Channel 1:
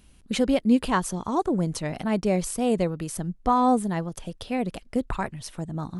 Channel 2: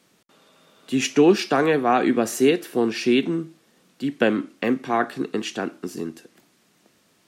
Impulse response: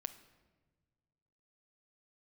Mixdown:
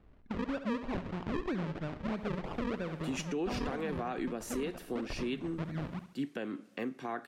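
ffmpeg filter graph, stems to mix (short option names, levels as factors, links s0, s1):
-filter_complex "[0:a]acrusher=samples=42:mix=1:aa=0.000001:lfo=1:lforange=42:lforate=3.1,lowpass=2700,acompressor=threshold=0.0631:ratio=2,volume=0.531,asplit=2[s0][s1];[s1]volume=0.266[s2];[1:a]adelay=2150,volume=0.266,asplit=2[s3][s4];[s4]volume=0.251[s5];[2:a]atrim=start_sample=2205[s6];[s5][s6]afir=irnorm=-1:irlink=0[s7];[s2]aecho=0:1:69|138|207|276|345|414:1|0.4|0.16|0.064|0.0256|0.0102[s8];[s0][s3][s7][s8]amix=inputs=4:normalize=0,alimiter=level_in=1.33:limit=0.0631:level=0:latency=1:release=287,volume=0.75"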